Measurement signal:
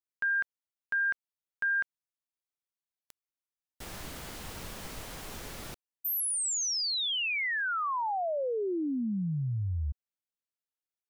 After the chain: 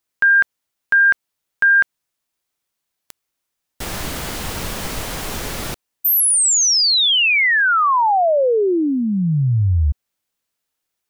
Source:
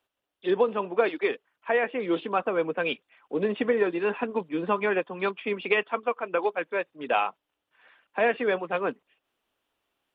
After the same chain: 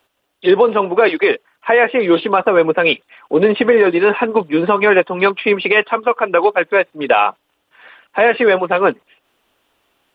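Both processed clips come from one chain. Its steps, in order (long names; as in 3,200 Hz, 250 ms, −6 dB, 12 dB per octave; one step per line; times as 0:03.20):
dynamic equaliser 230 Hz, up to −4 dB, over −40 dBFS, Q 1.4
boost into a limiter +17.5 dB
level −1.5 dB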